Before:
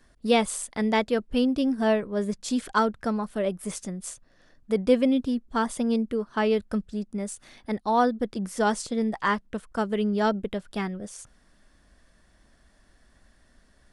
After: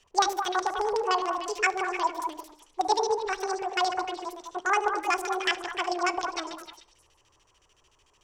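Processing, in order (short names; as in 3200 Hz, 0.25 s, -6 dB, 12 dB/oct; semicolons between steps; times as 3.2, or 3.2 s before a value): reverse delay 0.133 s, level -9.5 dB; spectral gain 0.83–1.6, 1300–5300 Hz -20 dB; LFO low-pass square 8 Hz 560–3600 Hz; low shelf 460 Hz -11.5 dB; wide varispeed 1.69×; notches 50/100/150/200/250/300 Hz; delay with a stepping band-pass 0.101 s, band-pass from 430 Hz, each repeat 1.4 oct, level -2 dB; reverb RT60 0.65 s, pre-delay 7 ms, DRR 17 dB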